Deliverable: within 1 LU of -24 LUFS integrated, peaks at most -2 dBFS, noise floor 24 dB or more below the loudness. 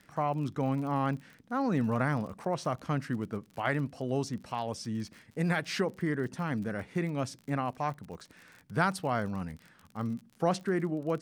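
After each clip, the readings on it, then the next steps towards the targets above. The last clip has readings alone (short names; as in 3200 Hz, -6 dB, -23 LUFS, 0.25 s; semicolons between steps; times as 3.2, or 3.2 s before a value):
ticks 39/s; loudness -33.0 LUFS; peak -13.5 dBFS; loudness target -24.0 LUFS
-> de-click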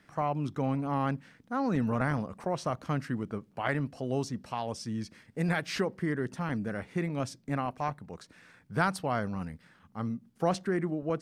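ticks 0/s; loudness -33.0 LUFS; peak -13.5 dBFS; loudness target -24.0 LUFS
-> gain +9 dB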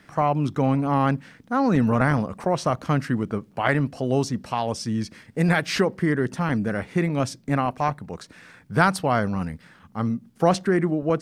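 loudness -24.0 LUFS; peak -4.5 dBFS; noise floor -54 dBFS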